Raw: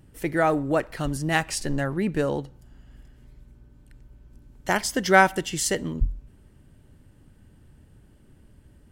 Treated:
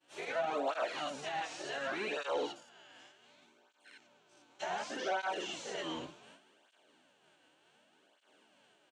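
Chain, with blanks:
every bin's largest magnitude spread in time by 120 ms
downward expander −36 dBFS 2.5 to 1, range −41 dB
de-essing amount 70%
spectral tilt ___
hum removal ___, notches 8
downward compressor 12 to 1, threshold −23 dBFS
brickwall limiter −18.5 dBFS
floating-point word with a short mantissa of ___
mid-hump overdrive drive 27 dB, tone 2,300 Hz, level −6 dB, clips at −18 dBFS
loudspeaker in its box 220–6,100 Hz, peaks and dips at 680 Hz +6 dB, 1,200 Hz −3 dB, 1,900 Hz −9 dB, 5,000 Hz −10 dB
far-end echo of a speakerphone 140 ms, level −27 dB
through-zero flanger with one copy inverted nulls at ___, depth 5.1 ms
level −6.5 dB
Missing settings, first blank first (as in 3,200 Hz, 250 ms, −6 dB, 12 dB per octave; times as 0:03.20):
+4.5 dB per octave, 346.7 Hz, 2 bits, 0.67 Hz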